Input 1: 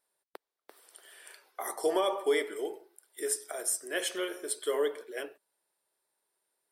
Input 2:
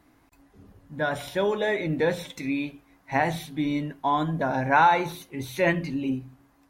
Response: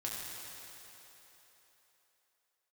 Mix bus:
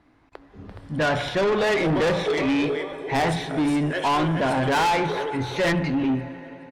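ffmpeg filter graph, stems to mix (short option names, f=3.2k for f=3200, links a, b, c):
-filter_complex "[0:a]acontrast=35,volume=-0.5dB,asplit=3[a][b][c];[b]volume=-12dB[d];[c]volume=-4.5dB[e];[1:a]dynaudnorm=f=150:g=7:m=12dB,volume=0dB,asplit=2[f][g];[g]volume=-16.5dB[h];[2:a]atrim=start_sample=2205[i];[d][h]amix=inputs=2:normalize=0[j];[j][i]afir=irnorm=-1:irlink=0[k];[e]aecho=0:1:420|840|1260|1680|2100:1|0.38|0.144|0.0549|0.0209[l];[a][f][k][l]amix=inputs=4:normalize=0,lowpass=3.9k,asoftclip=type=tanh:threshold=-18.5dB"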